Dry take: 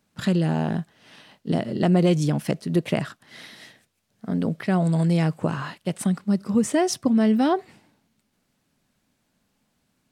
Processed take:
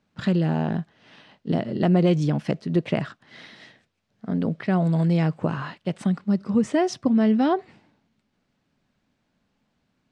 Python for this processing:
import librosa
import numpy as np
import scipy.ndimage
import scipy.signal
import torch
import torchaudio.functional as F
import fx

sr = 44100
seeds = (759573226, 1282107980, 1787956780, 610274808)

y = fx.air_absorb(x, sr, metres=120.0)